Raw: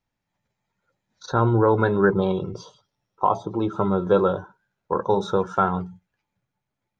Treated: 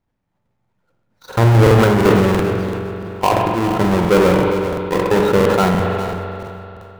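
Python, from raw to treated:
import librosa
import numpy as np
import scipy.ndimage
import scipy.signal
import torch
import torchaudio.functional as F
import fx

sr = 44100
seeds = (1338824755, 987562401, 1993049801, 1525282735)

y = fx.halfwave_hold(x, sr)
y = fx.high_shelf(y, sr, hz=2500.0, db=-11.0)
y = fx.echo_feedback(y, sr, ms=408, feedback_pct=29, wet_db=-13.0)
y = fx.rev_spring(y, sr, rt60_s=3.4, pass_ms=(43,), chirp_ms=35, drr_db=5.5)
y = fx.buffer_crackle(y, sr, first_s=0.6, period_s=0.34, block=2048, kind='repeat')
y = fx.sustainer(y, sr, db_per_s=20.0)
y = y * 10.0 ** (1.5 / 20.0)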